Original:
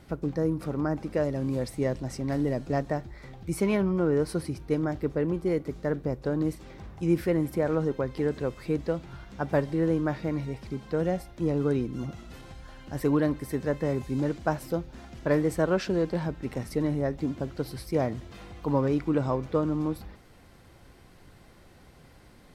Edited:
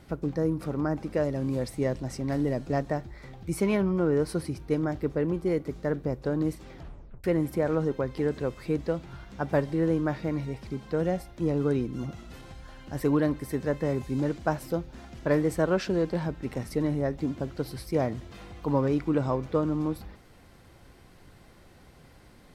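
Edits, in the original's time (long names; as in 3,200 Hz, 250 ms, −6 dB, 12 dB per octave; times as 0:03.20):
0:06.74: tape stop 0.50 s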